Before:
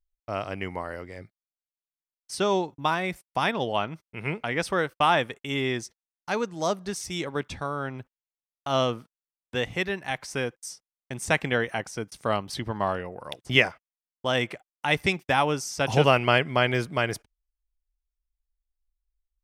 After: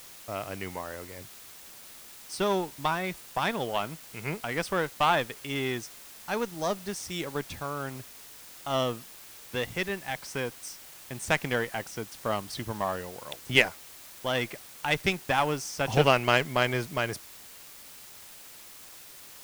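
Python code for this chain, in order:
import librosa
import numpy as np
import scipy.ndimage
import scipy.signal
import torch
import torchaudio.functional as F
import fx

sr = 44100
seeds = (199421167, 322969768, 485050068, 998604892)

y = fx.cheby_harmonics(x, sr, harmonics=(3, 7, 8), levels_db=(-26, -33, -27), full_scale_db=-2.0)
y = fx.quant_dither(y, sr, seeds[0], bits=8, dither='triangular')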